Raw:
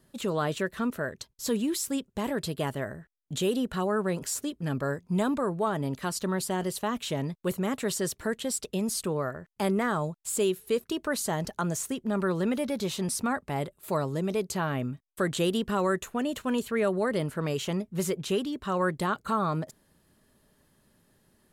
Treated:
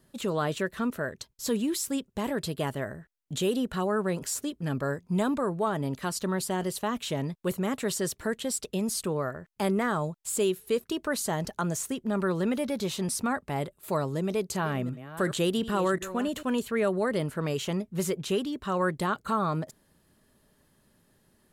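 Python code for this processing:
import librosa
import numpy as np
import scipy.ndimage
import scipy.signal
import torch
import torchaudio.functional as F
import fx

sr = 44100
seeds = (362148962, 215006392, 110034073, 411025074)

y = fx.reverse_delay(x, sr, ms=363, wet_db=-13, at=(14.17, 16.43))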